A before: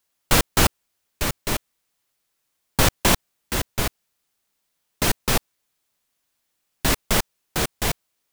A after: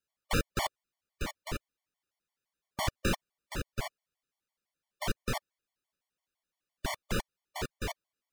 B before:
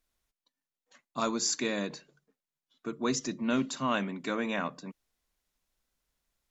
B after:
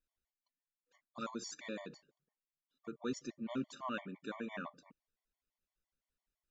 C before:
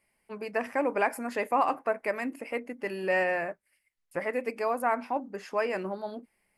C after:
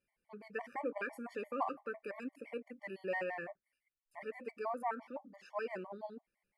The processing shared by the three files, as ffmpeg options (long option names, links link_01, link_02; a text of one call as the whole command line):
ffmpeg -i in.wav -af "lowpass=frequency=3800:poles=1,afftfilt=real='re*gt(sin(2*PI*5.9*pts/sr)*(1-2*mod(floor(b*sr/1024/590),2)),0)':imag='im*gt(sin(2*PI*5.9*pts/sr)*(1-2*mod(floor(b*sr/1024/590),2)),0)':win_size=1024:overlap=0.75,volume=-8dB" out.wav